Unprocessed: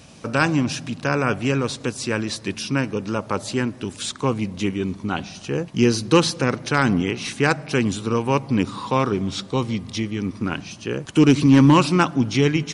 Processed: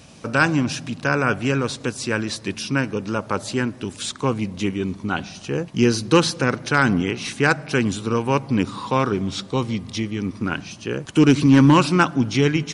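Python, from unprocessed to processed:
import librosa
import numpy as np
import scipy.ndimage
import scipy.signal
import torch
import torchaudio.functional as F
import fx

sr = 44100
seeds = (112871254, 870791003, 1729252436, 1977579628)

y = fx.dynamic_eq(x, sr, hz=1500.0, q=5.3, threshold_db=-41.0, ratio=4.0, max_db=5)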